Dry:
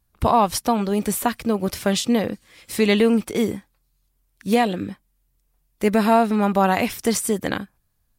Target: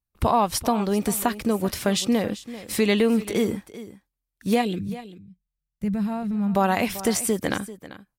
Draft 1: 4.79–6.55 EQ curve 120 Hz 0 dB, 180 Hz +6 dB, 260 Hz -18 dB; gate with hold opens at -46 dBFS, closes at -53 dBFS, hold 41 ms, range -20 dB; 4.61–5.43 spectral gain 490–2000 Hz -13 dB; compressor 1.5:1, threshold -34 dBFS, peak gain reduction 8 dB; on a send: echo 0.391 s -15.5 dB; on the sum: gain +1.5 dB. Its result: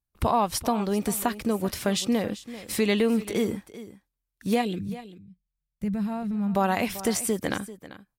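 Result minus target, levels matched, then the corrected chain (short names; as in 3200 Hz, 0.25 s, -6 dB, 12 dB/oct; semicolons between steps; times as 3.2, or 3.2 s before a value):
compressor: peak gain reduction +3 dB
4.79–6.55 EQ curve 120 Hz 0 dB, 180 Hz +6 dB, 260 Hz -18 dB; gate with hold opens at -46 dBFS, closes at -53 dBFS, hold 41 ms, range -20 dB; 4.61–5.43 spectral gain 490–2000 Hz -13 dB; compressor 1.5:1, threshold -25.5 dBFS, peak gain reduction 5 dB; on a send: echo 0.391 s -15.5 dB; on the sum: gain +1.5 dB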